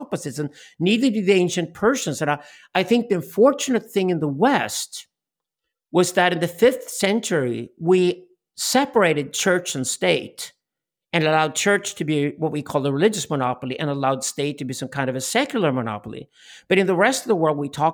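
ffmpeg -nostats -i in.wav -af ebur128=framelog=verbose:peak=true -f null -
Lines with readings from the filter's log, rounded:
Integrated loudness:
  I:         -21.0 LUFS
  Threshold: -31.4 LUFS
Loudness range:
  LRA:         2.8 LU
  Threshold: -41.6 LUFS
  LRA low:   -23.2 LUFS
  LRA high:  -20.3 LUFS
True peak:
  Peak:       -3.8 dBFS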